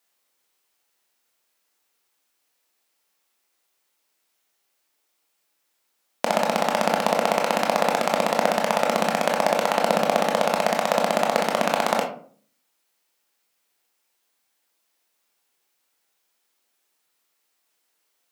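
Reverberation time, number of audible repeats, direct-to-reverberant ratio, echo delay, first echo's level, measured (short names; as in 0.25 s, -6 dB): 0.50 s, none, 0.5 dB, none, none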